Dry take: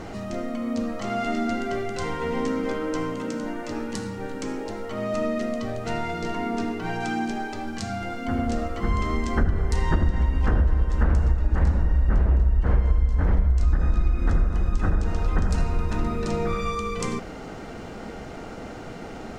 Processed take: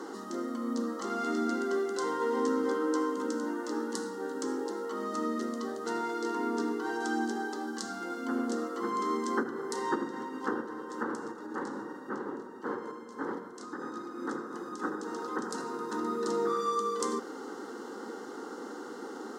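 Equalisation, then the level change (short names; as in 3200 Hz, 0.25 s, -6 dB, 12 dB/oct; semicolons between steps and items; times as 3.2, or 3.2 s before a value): steep high-pass 170 Hz 48 dB/oct; fixed phaser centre 650 Hz, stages 6; 0.0 dB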